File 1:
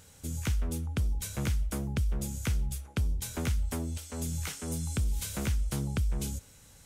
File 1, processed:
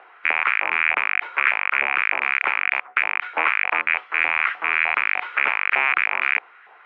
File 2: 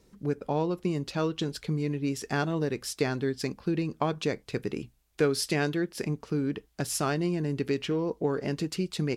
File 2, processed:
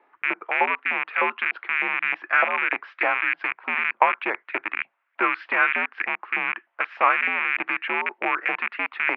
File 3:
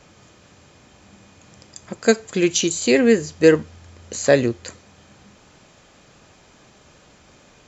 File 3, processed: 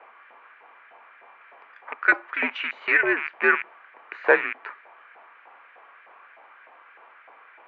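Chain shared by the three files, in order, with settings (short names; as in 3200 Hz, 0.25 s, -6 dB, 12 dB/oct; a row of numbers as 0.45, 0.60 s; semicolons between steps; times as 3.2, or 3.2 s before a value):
rattling part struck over -35 dBFS, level -20 dBFS; LFO high-pass saw up 3.3 Hz 830–1800 Hz; mistuned SSB -95 Hz 360–2500 Hz; normalise peaks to -3 dBFS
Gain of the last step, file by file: +14.5, +8.5, +2.0 dB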